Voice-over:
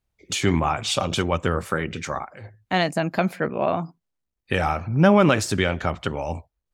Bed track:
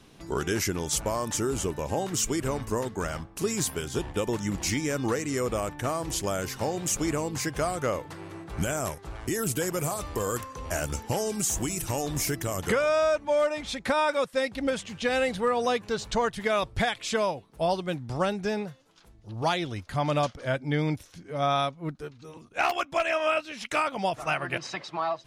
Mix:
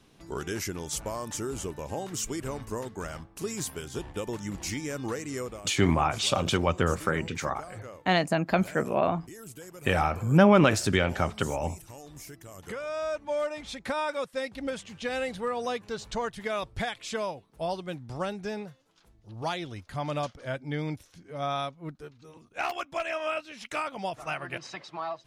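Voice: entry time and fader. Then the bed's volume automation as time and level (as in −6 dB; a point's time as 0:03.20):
5.35 s, −2.5 dB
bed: 0:05.41 −5.5 dB
0:05.64 −16.5 dB
0:12.45 −16.5 dB
0:13.23 −5.5 dB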